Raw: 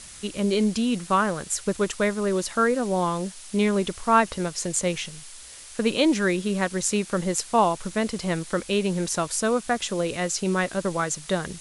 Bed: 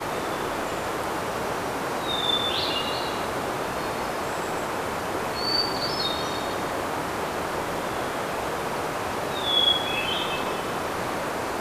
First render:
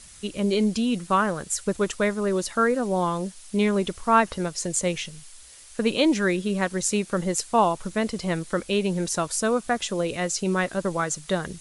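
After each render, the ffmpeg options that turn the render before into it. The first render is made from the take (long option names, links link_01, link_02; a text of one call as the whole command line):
ffmpeg -i in.wav -af "afftdn=noise_reduction=6:noise_floor=-43" out.wav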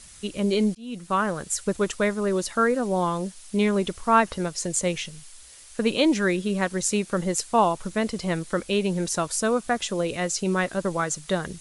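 ffmpeg -i in.wav -filter_complex "[0:a]asplit=2[link_01][link_02];[link_01]atrim=end=0.75,asetpts=PTS-STARTPTS,afade=type=out:start_time=0.746:duration=0.004:curve=hsin[link_03];[link_02]atrim=start=0.75,asetpts=PTS-STARTPTS,afade=type=in:duration=0.75:curve=qsin[link_04];[link_03][link_04]concat=n=2:v=0:a=1" out.wav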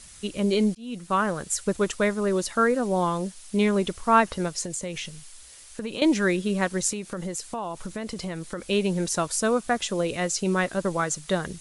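ffmpeg -i in.wav -filter_complex "[0:a]asettb=1/sr,asplit=3[link_01][link_02][link_03];[link_01]atrim=end=4.614[link_04];[link_02]atrim=start=4.61:end=6.02,asetpts=PTS-STARTPTS,afade=type=in:duration=0.004:curve=qsin,afade=type=out:start_time=1.406:duration=0.004:curve=qsin,acompressor=threshold=-28dB:ratio=6:attack=3.2:release=140:knee=1:detection=peak[link_05];[link_03]atrim=start=6.016[link_06];[link_04][link_05]acrossfade=duration=0.004:curve1=hsin:curve2=qsin[link_07];[link_07][link_06]acrossfade=duration=0.004:curve1=qsin:curve2=hsin,asettb=1/sr,asplit=3[link_08][link_09][link_10];[link_08]atrim=end=6.914[link_11];[link_09]atrim=start=6.91:end=8.68,asetpts=PTS-STARTPTS,afade=type=in:duration=0.004:curve=qsin,afade=type=out:start_time=1.766:duration=0.004:curve=qsin,acompressor=threshold=-28dB:ratio=6:attack=3.2:release=140:knee=1:detection=peak[link_12];[link_10]atrim=start=8.676[link_13];[link_11][link_12]acrossfade=duration=0.004:curve1=hsin:curve2=qsin[link_14];[link_14][link_13]acrossfade=duration=0.004:curve1=qsin:curve2=hsin" out.wav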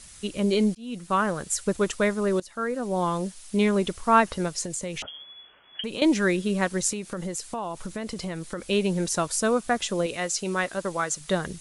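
ffmpeg -i in.wav -filter_complex "[0:a]asettb=1/sr,asplit=3[link_01][link_02][link_03];[link_01]atrim=end=5.024[link_04];[link_02]atrim=start=5.02:end=5.84,asetpts=PTS-STARTPTS,afade=type=in:duration=0.004:curve=qsin,afade=type=out:start_time=0.816:duration=0.004:curve=qsin,lowpass=frequency=2900:width_type=q:width=0.5098,lowpass=frequency=2900:width_type=q:width=0.6013,lowpass=frequency=2900:width_type=q:width=0.9,lowpass=frequency=2900:width_type=q:width=2.563,afreqshift=-3400[link_05];[link_03]atrim=start=5.836[link_06];[link_04][link_05]acrossfade=duration=0.004:curve1=hsin:curve2=qsin[link_07];[link_07][link_06]acrossfade=duration=0.004:curve1=qsin:curve2=hsin,asettb=1/sr,asplit=3[link_08][link_09][link_10];[link_08]atrim=end=10.064[link_11];[link_09]atrim=start=10.06:end=11.21,asetpts=PTS-STARTPTS,afade=type=in:duration=0.004:curve=qsin,afade=type=out:start_time=1.146:duration=0.004:curve=qsin,lowshelf=frequency=330:gain=-8.5[link_12];[link_10]atrim=start=11.206[link_13];[link_11][link_12]acrossfade=duration=0.004:curve1=hsin:curve2=qsin[link_14];[link_14][link_13]acrossfade=duration=0.004:curve1=qsin:curve2=hsin,asplit=2[link_15][link_16];[link_15]atrim=end=2.4,asetpts=PTS-STARTPTS,afade=type=out:start_time=2.396:duration=0.004:curve=hsin:silence=0.133352[link_17];[link_16]atrim=start=2.4,asetpts=PTS-STARTPTS,afade=type=in:duration=0.75:silence=0.133352[link_18];[link_17][link_18]concat=n=2:v=0:a=1" out.wav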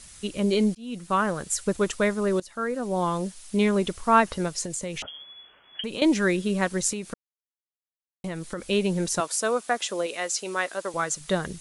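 ffmpeg -i in.wav -filter_complex "[0:a]asettb=1/sr,asplit=3[link_01][link_02][link_03];[link_01]atrim=end=9.204[link_04];[link_02]atrim=start=9.2:end=10.94,asetpts=PTS-STARTPTS,afade=type=in:duration=0.004:curve=qsin,afade=type=out:start_time=1.736:duration=0.004:curve=qsin,highpass=370[link_05];[link_03]atrim=start=10.936[link_06];[link_04][link_05]acrossfade=duration=0.004:curve1=hsin:curve2=qsin[link_07];[link_07][link_06]acrossfade=duration=0.004:curve1=qsin:curve2=hsin,asplit=3[link_08][link_09][link_10];[link_08]atrim=end=7.14,asetpts=PTS-STARTPTS,afade=type=out:start_time=7.136:duration=0.004:curve=hsin[link_11];[link_09]atrim=start=7.14:end=8.24,asetpts=PTS-STARTPTS,volume=0[link_12];[link_10]atrim=start=8.24,asetpts=PTS-STARTPTS,afade=type=in:duration=0.004:curve=hsin[link_13];[link_11][link_12][link_13]concat=n=3:v=0:a=1" out.wav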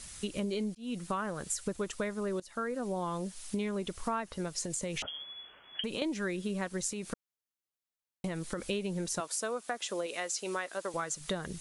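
ffmpeg -i in.wav -af "acompressor=threshold=-32dB:ratio=6" out.wav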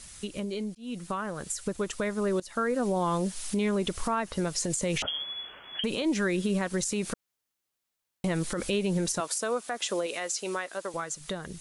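ffmpeg -i in.wav -af "dynaudnorm=framelen=380:gausssize=11:maxgain=9dB,alimiter=limit=-19.5dB:level=0:latency=1:release=71" out.wav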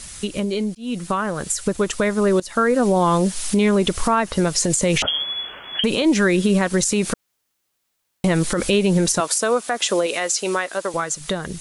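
ffmpeg -i in.wav -af "volume=10.5dB" out.wav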